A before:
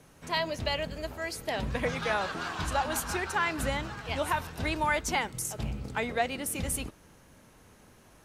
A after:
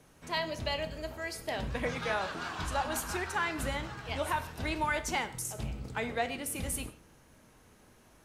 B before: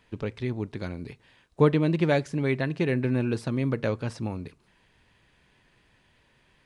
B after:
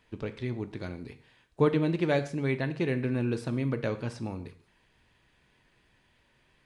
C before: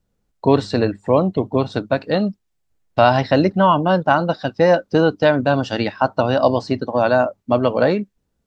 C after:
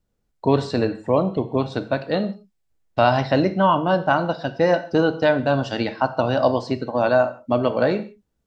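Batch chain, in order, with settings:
non-linear reverb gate 0.19 s falling, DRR 9.5 dB; gain -3.5 dB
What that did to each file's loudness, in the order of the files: -3.0, -3.5, -3.0 LU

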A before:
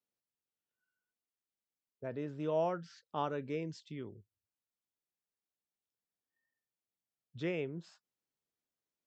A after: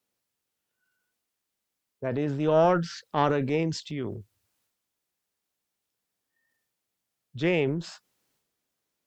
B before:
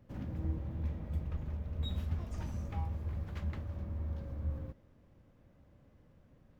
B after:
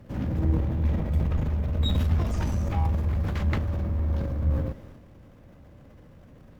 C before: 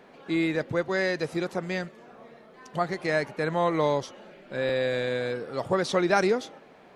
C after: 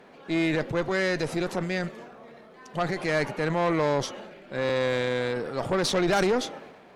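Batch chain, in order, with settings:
added harmonics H 5 -18 dB, 8 -19 dB, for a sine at -9 dBFS; transient shaper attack -1 dB, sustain +7 dB; match loudness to -27 LUFS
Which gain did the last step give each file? +7.0, +7.5, -3.5 dB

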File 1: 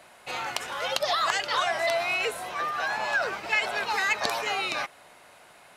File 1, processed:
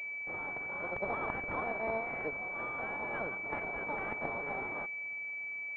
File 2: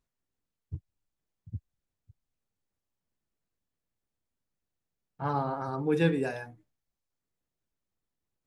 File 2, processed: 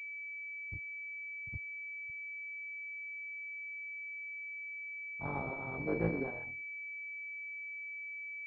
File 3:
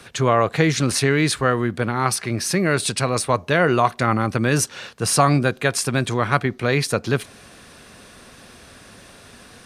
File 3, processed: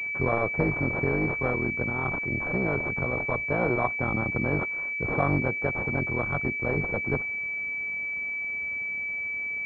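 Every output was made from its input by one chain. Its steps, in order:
cycle switcher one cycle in 3, muted; pulse-width modulation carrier 2300 Hz; gain -6 dB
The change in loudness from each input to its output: -9.0, -10.0, -7.0 LU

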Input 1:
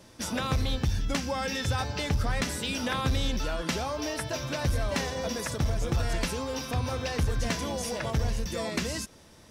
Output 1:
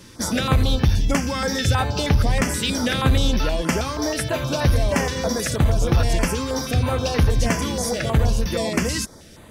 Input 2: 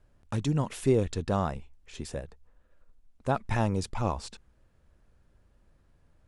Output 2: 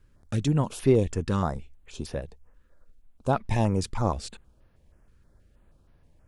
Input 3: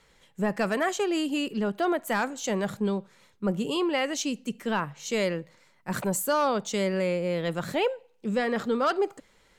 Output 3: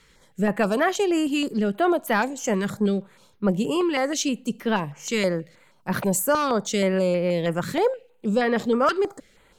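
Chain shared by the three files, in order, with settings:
stepped notch 6.3 Hz 690–7700 Hz; normalise peaks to -9 dBFS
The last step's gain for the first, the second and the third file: +10.0, +3.5, +5.5 dB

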